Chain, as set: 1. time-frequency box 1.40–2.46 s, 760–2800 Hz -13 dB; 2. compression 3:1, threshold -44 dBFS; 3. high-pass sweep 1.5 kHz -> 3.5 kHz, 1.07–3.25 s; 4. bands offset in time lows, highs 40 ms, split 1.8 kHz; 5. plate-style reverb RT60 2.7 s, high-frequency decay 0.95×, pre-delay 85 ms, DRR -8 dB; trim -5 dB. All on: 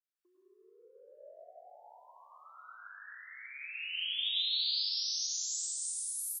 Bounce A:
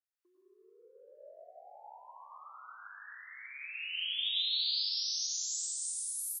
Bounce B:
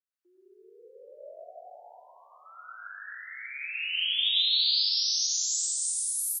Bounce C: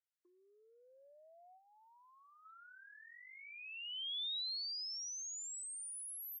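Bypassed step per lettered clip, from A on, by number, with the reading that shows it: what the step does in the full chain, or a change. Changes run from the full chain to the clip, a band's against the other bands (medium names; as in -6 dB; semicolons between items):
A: 1, 1 kHz band +3.5 dB; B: 2, mean gain reduction 6.5 dB; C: 5, echo-to-direct 10.0 dB to -2.5 dB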